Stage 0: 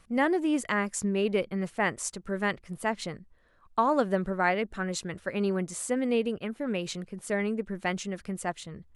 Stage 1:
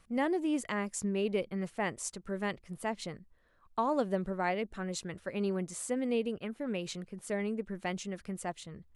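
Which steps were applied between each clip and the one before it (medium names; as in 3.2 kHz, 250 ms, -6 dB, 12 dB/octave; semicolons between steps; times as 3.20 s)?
dynamic bell 1.5 kHz, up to -6 dB, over -43 dBFS, Q 1.6; trim -4.5 dB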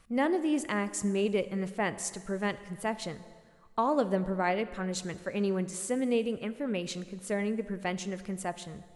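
plate-style reverb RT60 1.8 s, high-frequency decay 0.8×, DRR 13 dB; trim +3 dB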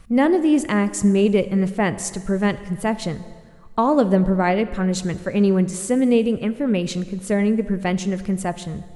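bass shelf 260 Hz +10.5 dB; trim +7.5 dB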